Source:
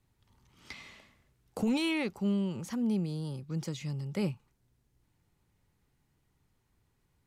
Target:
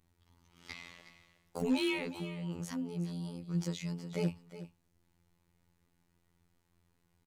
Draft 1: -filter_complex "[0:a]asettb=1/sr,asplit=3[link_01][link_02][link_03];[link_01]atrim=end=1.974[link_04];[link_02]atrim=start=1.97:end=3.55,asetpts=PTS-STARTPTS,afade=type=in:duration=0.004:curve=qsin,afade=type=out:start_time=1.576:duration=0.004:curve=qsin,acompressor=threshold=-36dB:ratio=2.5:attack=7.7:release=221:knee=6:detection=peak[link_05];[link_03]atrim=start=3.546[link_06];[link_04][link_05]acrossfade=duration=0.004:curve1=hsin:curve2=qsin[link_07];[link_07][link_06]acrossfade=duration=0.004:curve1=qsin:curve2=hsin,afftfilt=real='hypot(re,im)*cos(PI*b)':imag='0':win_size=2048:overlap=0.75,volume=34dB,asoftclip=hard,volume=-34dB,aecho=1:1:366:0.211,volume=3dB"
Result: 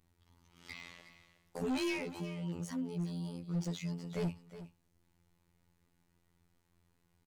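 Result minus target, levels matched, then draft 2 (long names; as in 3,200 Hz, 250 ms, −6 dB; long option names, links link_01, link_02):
gain into a clipping stage and back: distortion +12 dB
-filter_complex "[0:a]asettb=1/sr,asplit=3[link_01][link_02][link_03];[link_01]atrim=end=1.974[link_04];[link_02]atrim=start=1.97:end=3.55,asetpts=PTS-STARTPTS,afade=type=in:duration=0.004:curve=qsin,afade=type=out:start_time=1.576:duration=0.004:curve=qsin,acompressor=threshold=-36dB:ratio=2.5:attack=7.7:release=221:knee=6:detection=peak[link_05];[link_03]atrim=start=3.546[link_06];[link_04][link_05]acrossfade=duration=0.004:curve1=hsin:curve2=qsin[link_07];[link_07][link_06]acrossfade=duration=0.004:curve1=qsin:curve2=hsin,afftfilt=real='hypot(re,im)*cos(PI*b)':imag='0':win_size=2048:overlap=0.75,volume=25.5dB,asoftclip=hard,volume=-25.5dB,aecho=1:1:366:0.211,volume=3dB"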